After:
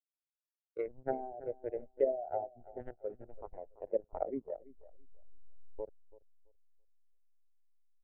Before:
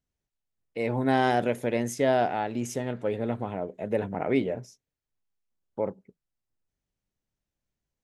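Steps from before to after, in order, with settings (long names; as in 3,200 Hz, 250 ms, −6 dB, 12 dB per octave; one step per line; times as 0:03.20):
adaptive Wiener filter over 41 samples
in parallel at −2.5 dB: compressor whose output falls as the input rises −32 dBFS, ratio −0.5
on the sum: meter weighting curve ITU-R 468
slack as between gear wheels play −25.5 dBFS
transient designer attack +6 dB, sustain −4 dB
treble cut that deepens with the level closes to 540 Hz, closed at −21.5 dBFS
on a send: repeating echo 333 ms, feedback 51%, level −8 dB
on the sum: every bin expanded away from the loudest bin 2.5 to 1
level −8 dB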